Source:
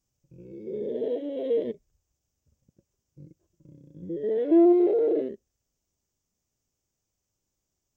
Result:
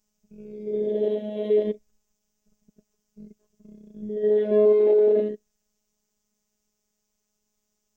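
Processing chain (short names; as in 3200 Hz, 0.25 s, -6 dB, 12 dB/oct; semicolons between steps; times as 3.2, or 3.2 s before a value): robotiser 211 Hz; gain +7 dB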